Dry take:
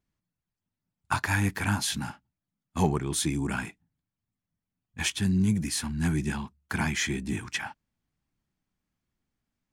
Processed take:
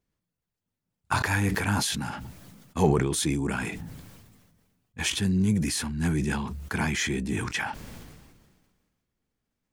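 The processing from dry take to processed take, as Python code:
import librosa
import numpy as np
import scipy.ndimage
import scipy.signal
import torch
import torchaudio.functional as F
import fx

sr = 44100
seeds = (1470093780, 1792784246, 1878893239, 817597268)

y = fx.peak_eq(x, sr, hz=470.0, db=7.5, octaves=0.52)
y = fx.sustainer(y, sr, db_per_s=36.0)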